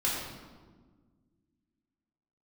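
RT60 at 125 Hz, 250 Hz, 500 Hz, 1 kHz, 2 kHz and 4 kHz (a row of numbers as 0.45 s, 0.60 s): 2.4 s, 2.5 s, 1.7 s, 1.3 s, 1.0 s, 0.95 s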